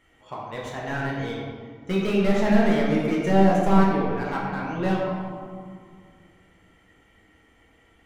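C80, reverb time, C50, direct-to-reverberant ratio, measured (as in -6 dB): 2.0 dB, 2.0 s, 0.0 dB, -5.0 dB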